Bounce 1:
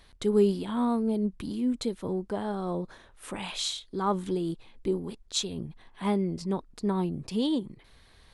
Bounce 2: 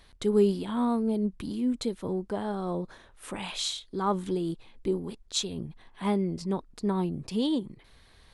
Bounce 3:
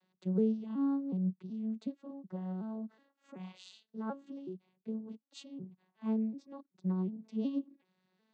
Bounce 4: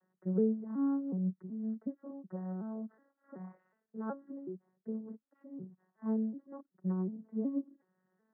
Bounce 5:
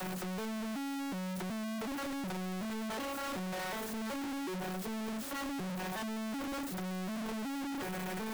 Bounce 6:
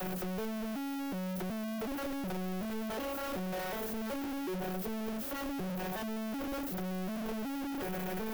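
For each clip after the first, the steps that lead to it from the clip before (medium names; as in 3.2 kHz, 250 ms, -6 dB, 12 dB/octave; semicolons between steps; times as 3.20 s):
no audible change
vocoder on a broken chord minor triad, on F#3, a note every 372 ms; trim -6.5 dB
rippled Chebyshev low-pass 1.9 kHz, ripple 3 dB; trim +1.5 dB
one-bit comparator
graphic EQ 125/250/1000/2000/4000/8000 Hz -5/-5/-7/-6/-6/-10 dB; trim +6.5 dB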